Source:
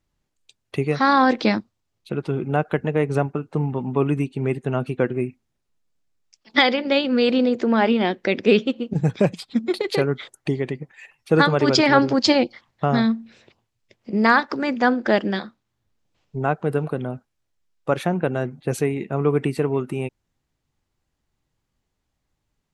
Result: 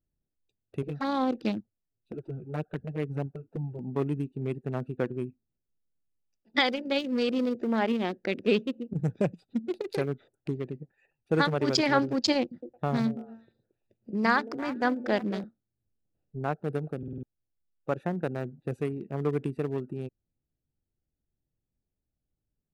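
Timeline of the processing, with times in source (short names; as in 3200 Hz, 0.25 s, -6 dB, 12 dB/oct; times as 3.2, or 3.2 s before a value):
0.82–3.79 envelope flanger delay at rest 9.5 ms, full sweep at -14 dBFS
12.4–15.44 delay with a stepping band-pass 0.112 s, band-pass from 150 Hz, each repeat 1.4 oct, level -4 dB
16.98 stutter in place 0.05 s, 5 plays
whole clip: Wiener smoothing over 41 samples; high shelf 8400 Hz +9.5 dB; gain -8 dB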